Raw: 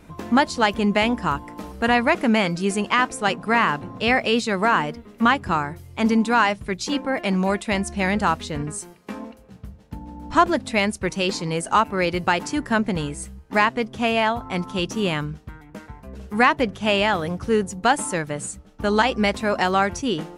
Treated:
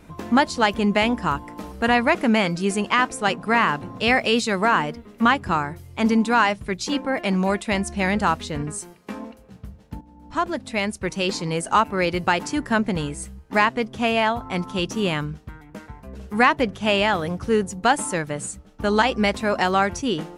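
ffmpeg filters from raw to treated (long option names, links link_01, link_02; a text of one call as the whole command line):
ffmpeg -i in.wav -filter_complex "[0:a]asettb=1/sr,asplit=3[link_01][link_02][link_03];[link_01]atrim=end=3.804[link_04];[link_02]atrim=start=3.8:end=4.59,asetpts=PTS-STARTPTS,afade=type=in:duration=0.004:curve=qsin,afade=type=out:start_time=0.786:duration=0.004:curve=qsin,highshelf=frequency=4300:gain=4.5[link_05];[link_03]atrim=start=4.586[link_06];[link_04][link_05]acrossfade=duration=0.004:curve1=hsin:curve2=qsin[link_07];[link_07][link_06]acrossfade=duration=0.004:curve1=qsin:curve2=hsin,asplit=2[link_08][link_09];[link_08]atrim=end=10.01,asetpts=PTS-STARTPTS,afade=type=out:start_time=10.006:duration=0.004:curve=hsin:silence=0.223872[link_10];[link_09]atrim=start=10.01,asetpts=PTS-STARTPTS,afade=type=in:duration=1.38:silence=0.223872[link_11];[link_10][link_11]concat=n=2:v=0:a=1" out.wav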